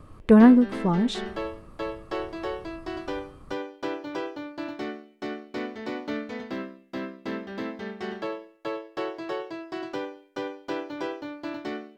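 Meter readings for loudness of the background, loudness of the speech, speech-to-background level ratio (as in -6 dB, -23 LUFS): -35.0 LUFS, -18.5 LUFS, 16.5 dB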